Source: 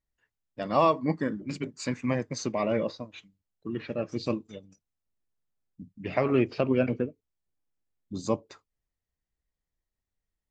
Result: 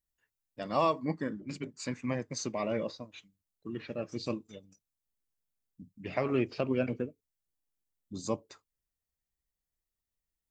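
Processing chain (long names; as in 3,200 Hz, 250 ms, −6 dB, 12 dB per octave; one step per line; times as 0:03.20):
high-shelf EQ 6,100 Hz +12 dB, from 0:01.05 +4 dB, from 0:02.29 +10.5 dB
level −5.5 dB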